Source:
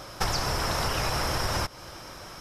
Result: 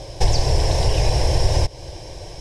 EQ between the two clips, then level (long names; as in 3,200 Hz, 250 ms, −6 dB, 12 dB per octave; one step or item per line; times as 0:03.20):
low-pass filter 9,400 Hz 24 dB per octave
low-shelf EQ 410 Hz +11.5 dB
phaser with its sweep stopped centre 540 Hz, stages 4
+5.0 dB